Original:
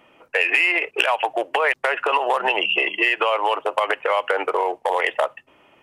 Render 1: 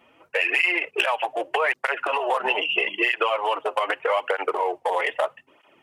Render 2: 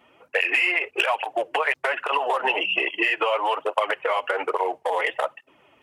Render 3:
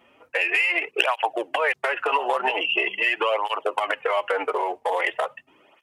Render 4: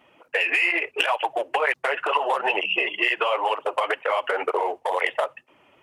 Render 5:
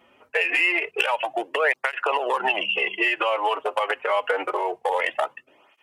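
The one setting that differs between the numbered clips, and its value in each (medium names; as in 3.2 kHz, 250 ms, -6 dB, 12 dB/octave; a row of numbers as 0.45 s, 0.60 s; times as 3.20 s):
cancelling through-zero flanger, nulls at: 0.8 Hz, 1.2 Hz, 0.43 Hz, 2.1 Hz, 0.26 Hz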